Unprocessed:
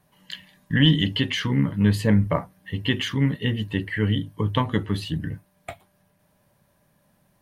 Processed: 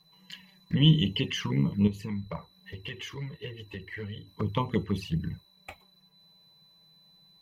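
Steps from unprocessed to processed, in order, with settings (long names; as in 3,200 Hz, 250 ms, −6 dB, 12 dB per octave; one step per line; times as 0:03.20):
0:01.87–0:04.28: downward compressor 2.5 to 1, threshold −30 dBFS, peak gain reduction 11 dB
steady tone 4,000 Hz −50 dBFS
EQ curve with evenly spaced ripples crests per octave 0.79, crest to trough 8 dB
flanger swept by the level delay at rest 6.7 ms, full sweep at −19 dBFS
level −4 dB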